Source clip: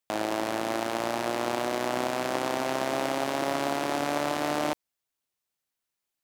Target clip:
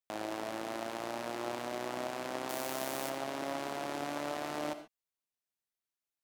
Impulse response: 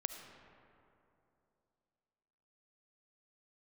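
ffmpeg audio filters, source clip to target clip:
-filter_complex "[0:a]asettb=1/sr,asplit=3[a][b][c];[a]atrim=end=2.494[d];[b]atrim=start=2.49:end=3.1,asetpts=PTS-STARTPTS,afade=t=in:d=0.004:c=qsin,afade=t=out:st=0.606:d=0.004:c=qsin,aemphasis=mode=production:type=50fm[e];[c]atrim=start=3.096[f];[d][e]acrossfade=d=0.004:c1=hsin:c2=qsin[g];[g][f]acrossfade=d=0.004:c1=qsin:c2=hsin[h];[1:a]atrim=start_sample=2205,afade=t=out:st=0.19:d=0.01,atrim=end_sample=8820[i];[h][i]afir=irnorm=-1:irlink=0,volume=-8.5dB"

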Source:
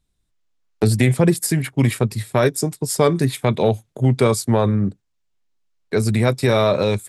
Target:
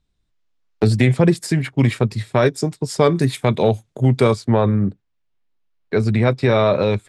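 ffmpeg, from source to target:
-af "asetnsamples=n=441:p=0,asendcmd='3.19 lowpass f 8900;4.33 lowpass f 3500',lowpass=5.5k,volume=1dB"

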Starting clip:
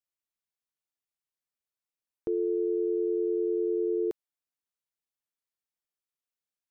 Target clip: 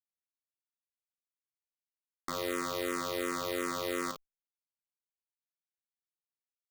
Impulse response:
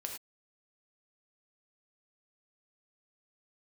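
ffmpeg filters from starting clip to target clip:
-filter_complex "[0:a]highpass=f=69:w=0.5412,highpass=f=69:w=1.3066,acrossover=split=110|240|370[a][b][c][d];[d]crystalizer=i=3:c=0[e];[a][b][c][e]amix=inputs=4:normalize=0,acrusher=bits=3:mix=0:aa=0.000001,aecho=1:1:32|51:0.282|0.355,asplit=2[f][g];[g]afreqshift=-2.8[h];[f][h]amix=inputs=2:normalize=1,volume=-4.5dB"

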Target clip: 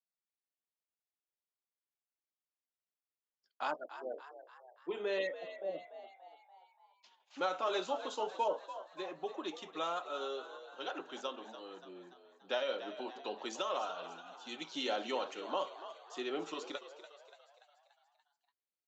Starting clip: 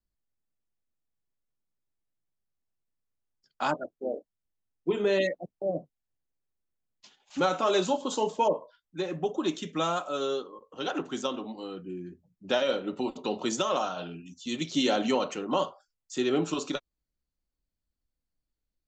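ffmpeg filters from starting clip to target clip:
-filter_complex "[0:a]highpass=440,lowpass=4.9k,asplit=7[a][b][c][d][e][f][g];[b]adelay=289,afreqshift=70,volume=-12.5dB[h];[c]adelay=578,afreqshift=140,volume=-17.9dB[i];[d]adelay=867,afreqshift=210,volume=-23.2dB[j];[e]adelay=1156,afreqshift=280,volume=-28.6dB[k];[f]adelay=1445,afreqshift=350,volume=-33.9dB[l];[g]adelay=1734,afreqshift=420,volume=-39.3dB[m];[a][h][i][j][k][l][m]amix=inputs=7:normalize=0,volume=-7.5dB"

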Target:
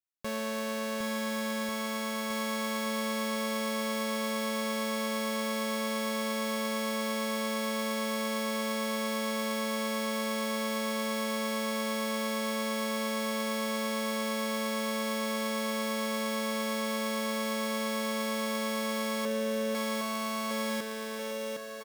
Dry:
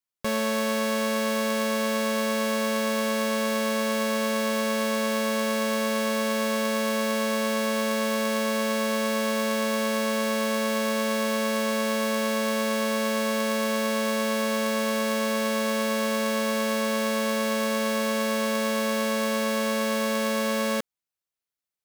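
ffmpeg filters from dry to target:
-filter_complex "[0:a]asettb=1/sr,asplit=3[a][b][c];[a]atrim=end=19.254[d];[b]atrim=start=19.25:end=19.75,asetpts=PTS-STARTPTS,afade=t=in:d=0.004:c=qsin,afade=t=out:st=0.496:d=0.004:c=qsin,lowpass=f=1.2k:w=0.5412,lowpass=f=1.2k:w=1.3066[e];[c]atrim=start=19.746[f];[d][e]acrossfade=d=0.004:c1=hsin:c2=qsin[g];[g][f]acrossfade=d=0.004:c1=qsin:c2=hsin,asplit=2[h][i];[i]aecho=0:1:760|1444|2060|2614|3112:0.631|0.398|0.251|0.158|0.1[j];[h][j]amix=inputs=2:normalize=0,volume=-8dB"

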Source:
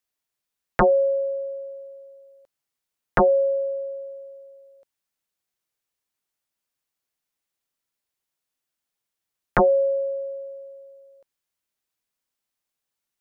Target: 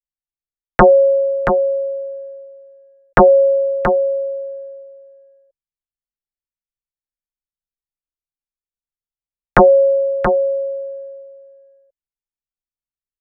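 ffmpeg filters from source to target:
-af "anlmdn=0.0398,aecho=1:1:678:0.422,volume=8.5dB"

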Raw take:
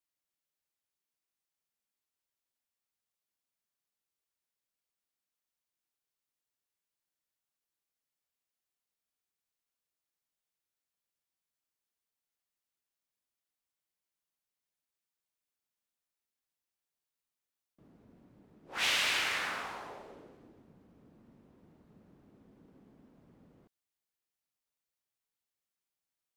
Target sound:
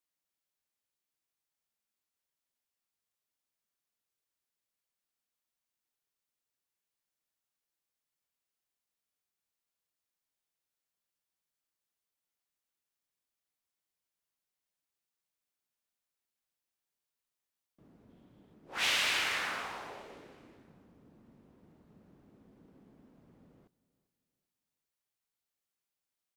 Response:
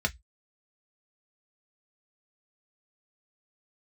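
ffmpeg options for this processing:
-filter_complex "[0:a]asettb=1/sr,asplit=3[a][b][c];[a]atrim=end=18.094[d];[b]atrim=start=18.09:end=18.54,asetpts=PTS-STARTPTS,afade=t=in:d=0.004:c=qsin,afade=t=out:st=0.446:d=0.004:c=qsin,equalizer=f=3.3k:t=o:w=0.34:g=10.5[e];[c]atrim=start=18.536[f];[d][e]acrossfade=d=0.004:c1=hsin:c2=qsin[g];[g][f]acrossfade=d=0.004:c1=qsin:c2=hsin,aecho=1:1:394|788|1182:0.1|0.035|0.0123"

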